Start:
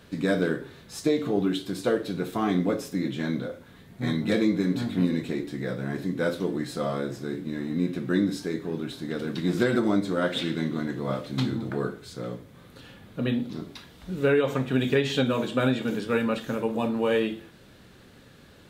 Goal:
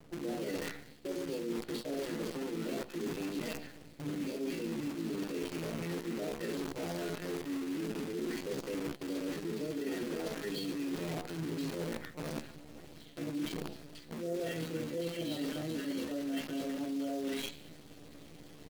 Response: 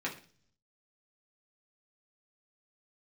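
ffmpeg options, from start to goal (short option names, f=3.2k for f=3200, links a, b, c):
-filter_complex "[0:a]aeval=exprs='val(0)+0.00708*(sin(2*PI*60*n/s)+sin(2*PI*2*60*n/s)/2+sin(2*PI*3*60*n/s)/3+sin(2*PI*4*60*n/s)/4+sin(2*PI*5*60*n/s)/5)':c=same,highpass=120,lowpass=4k,equalizer=f=840:t=o:w=0.99:g=-12.5,bandreject=f=50:t=h:w=6,bandreject=f=100:t=h:w=6,bandreject=f=150:t=h:w=6,bandreject=f=200:t=h:w=6,bandreject=f=250:t=h:w=6,bandreject=f=300:t=h:w=6,bandreject=f=350:t=h:w=6,bandreject=f=400:t=h:w=6,bandreject=f=450:t=h:w=6,asplit=2[a][b];[b]alimiter=limit=-23dB:level=0:latency=1:release=35,volume=0dB[c];[a][c]amix=inputs=2:normalize=0,lowshelf=f=320:g=5.5,asplit=2[d][e];[e]asetrate=33038,aresample=44100,atempo=1.33484,volume=-7dB[f];[d][f]amix=inputs=2:normalize=0,acrossover=split=960[g][h];[h]adelay=210[i];[g][i]amix=inputs=2:normalize=0[j];[1:a]atrim=start_sample=2205,asetrate=61740,aresample=44100[k];[j][k]afir=irnorm=-1:irlink=0,acrusher=bits=5:dc=4:mix=0:aa=0.000001,asetrate=53981,aresample=44100,atempo=0.816958,areverse,acompressor=threshold=-27dB:ratio=6,areverse,volume=-8dB"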